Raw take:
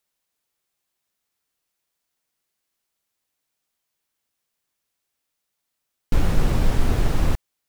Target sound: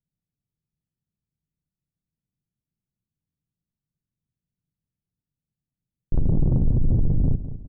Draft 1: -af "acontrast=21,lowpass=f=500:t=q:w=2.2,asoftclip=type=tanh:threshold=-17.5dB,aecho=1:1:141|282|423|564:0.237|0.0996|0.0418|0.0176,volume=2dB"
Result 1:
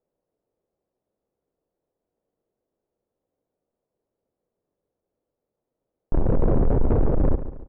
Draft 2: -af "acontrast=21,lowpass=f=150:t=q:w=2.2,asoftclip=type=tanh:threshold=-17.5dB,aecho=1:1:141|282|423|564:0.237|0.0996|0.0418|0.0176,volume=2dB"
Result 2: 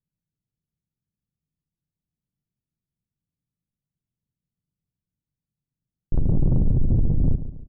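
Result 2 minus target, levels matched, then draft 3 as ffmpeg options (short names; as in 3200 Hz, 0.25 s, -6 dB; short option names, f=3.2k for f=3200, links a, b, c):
echo 63 ms early
-af "acontrast=21,lowpass=f=150:t=q:w=2.2,asoftclip=type=tanh:threshold=-17.5dB,aecho=1:1:204|408|612|816:0.237|0.0996|0.0418|0.0176,volume=2dB"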